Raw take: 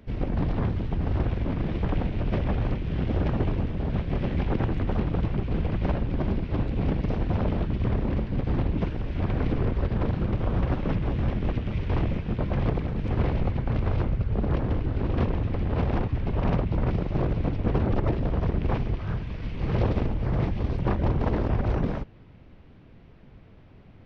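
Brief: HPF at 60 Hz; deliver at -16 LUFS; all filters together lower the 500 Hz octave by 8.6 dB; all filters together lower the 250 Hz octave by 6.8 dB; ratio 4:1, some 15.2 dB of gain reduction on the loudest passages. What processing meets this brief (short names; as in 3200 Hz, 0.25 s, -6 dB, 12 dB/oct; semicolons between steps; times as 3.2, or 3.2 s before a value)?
HPF 60 Hz; bell 250 Hz -8 dB; bell 500 Hz -8.5 dB; compressor 4:1, threshold -43 dBFS; gain +29 dB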